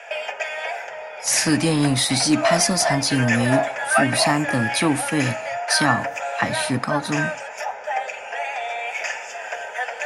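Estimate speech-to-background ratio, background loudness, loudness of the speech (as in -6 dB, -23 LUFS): 5.5 dB, -26.5 LUFS, -21.0 LUFS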